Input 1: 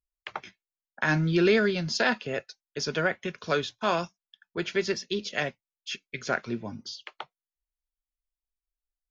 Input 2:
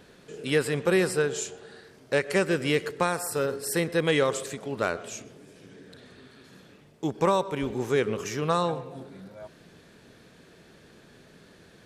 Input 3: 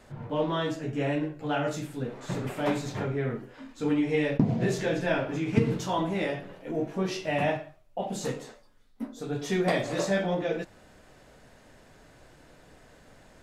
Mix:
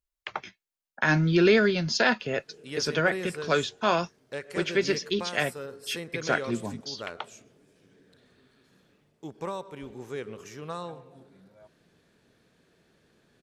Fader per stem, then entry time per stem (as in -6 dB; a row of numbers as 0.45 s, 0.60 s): +2.0 dB, -11.5 dB, mute; 0.00 s, 2.20 s, mute